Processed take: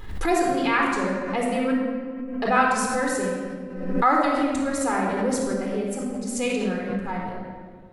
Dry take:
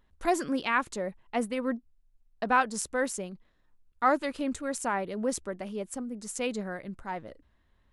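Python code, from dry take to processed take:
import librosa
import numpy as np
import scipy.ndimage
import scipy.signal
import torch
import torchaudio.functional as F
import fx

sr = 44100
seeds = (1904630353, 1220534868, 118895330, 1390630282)

y = fx.room_shoebox(x, sr, seeds[0], volume_m3=2600.0, walls='mixed', distance_m=4.0)
y = fx.pre_swell(y, sr, db_per_s=57.0)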